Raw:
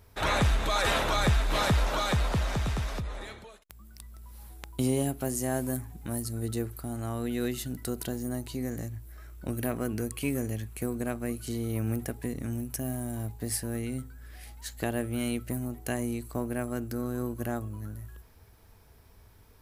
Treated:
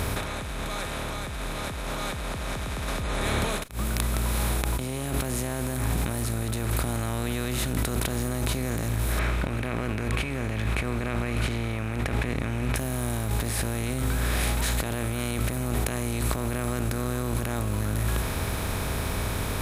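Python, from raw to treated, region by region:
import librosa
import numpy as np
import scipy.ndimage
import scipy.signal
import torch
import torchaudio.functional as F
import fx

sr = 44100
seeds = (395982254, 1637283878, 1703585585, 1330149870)

y = fx.chain(x, sr, fx.lowpass_res(hz=2300.0, q=3.2),
    fx.quant_float(bits=8), at=(9.19, 12.76))
y = fx.bin_compress(y, sr, power=0.4)
y = fx.over_compress(y, sr, threshold_db=-28.0, ratio=-1.0)
y = fx.attack_slew(y, sr, db_per_s=190.0)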